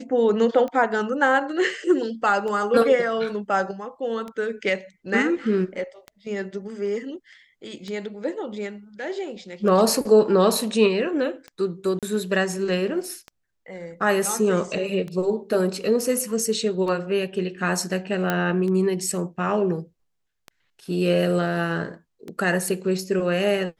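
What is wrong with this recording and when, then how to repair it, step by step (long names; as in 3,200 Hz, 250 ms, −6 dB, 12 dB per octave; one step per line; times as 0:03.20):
scratch tick 33 1/3 rpm −21 dBFS
0:11.99–0:12.03: drop-out 37 ms
0:18.30: click −9 dBFS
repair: click removal
repair the gap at 0:11.99, 37 ms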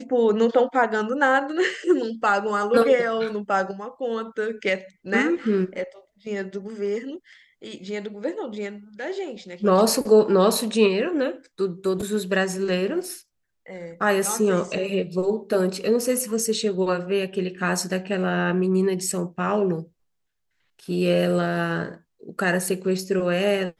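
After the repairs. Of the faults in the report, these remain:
none of them is left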